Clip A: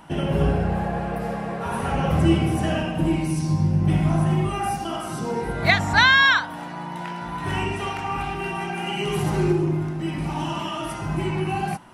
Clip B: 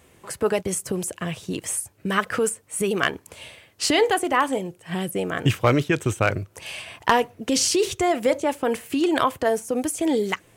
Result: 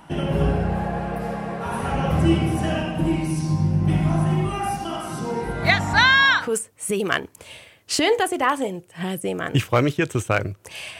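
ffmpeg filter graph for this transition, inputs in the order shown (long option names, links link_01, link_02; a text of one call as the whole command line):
ffmpeg -i cue0.wav -i cue1.wav -filter_complex "[0:a]apad=whole_dur=10.99,atrim=end=10.99,atrim=end=6.55,asetpts=PTS-STARTPTS[link_01];[1:a]atrim=start=2.26:end=6.9,asetpts=PTS-STARTPTS[link_02];[link_01][link_02]acrossfade=duration=0.2:curve1=tri:curve2=tri" out.wav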